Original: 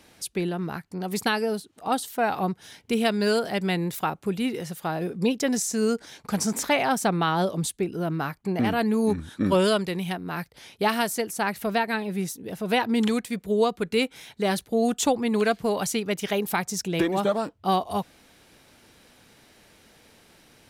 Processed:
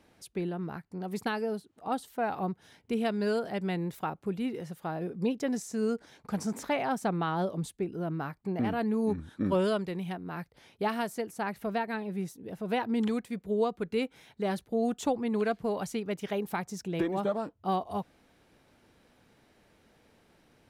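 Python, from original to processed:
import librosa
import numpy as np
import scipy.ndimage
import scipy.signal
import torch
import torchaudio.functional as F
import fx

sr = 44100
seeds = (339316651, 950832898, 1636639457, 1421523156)

y = fx.high_shelf(x, sr, hz=2300.0, db=-10.5)
y = y * 10.0 ** (-5.5 / 20.0)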